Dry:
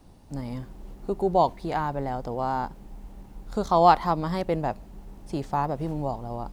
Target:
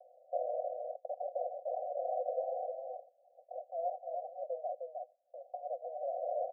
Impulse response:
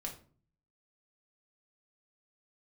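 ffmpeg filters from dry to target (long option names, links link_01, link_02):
-filter_complex "[0:a]agate=range=-33dB:threshold=-36dB:ratio=16:detection=peak,asettb=1/sr,asplit=3[link_01][link_02][link_03];[link_01]atrim=end=3.604[link_04];[link_02]atrim=start=3.6:end=6.11,asetpts=PTS-STARTPTS,afade=type=in:duration=0.004:curve=qsin,afade=type=out:start_time=2.506:duration=0.004:curve=qsin,aderivative[link_05];[link_03]atrim=start=6.106[link_06];[link_04][link_05]acrossfade=duration=0.004:curve1=hsin:curve2=qsin[link_07];[link_07][link_06]acrossfade=duration=0.004:curve1=qsin:curve2=hsin,acompressor=mode=upward:threshold=-42dB:ratio=2.5,alimiter=limit=-18.5dB:level=0:latency=1:release=434,acompressor=threshold=-37dB:ratio=4,aeval=exprs='0.0473*(cos(1*acos(clip(val(0)/0.0473,-1,1)))-cos(1*PI/2))+0.00473*(cos(2*acos(clip(val(0)/0.0473,-1,1)))-cos(2*PI/2))+0.00841*(cos(6*acos(clip(val(0)/0.0473,-1,1)))-cos(6*PI/2))+0.00133*(cos(7*acos(clip(val(0)/0.0473,-1,1)))-cos(7*PI/2))+0.00335*(cos(8*acos(clip(val(0)/0.0473,-1,1)))-cos(8*PI/2))':channel_layout=same,aeval=exprs='(mod(79.4*val(0)+1,2)-1)/79.4':channel_layout=same,asuperpass=centerf=610:order=20:qfactor=2.3,aecho=1:1:309:0.596,volume=17.5dB"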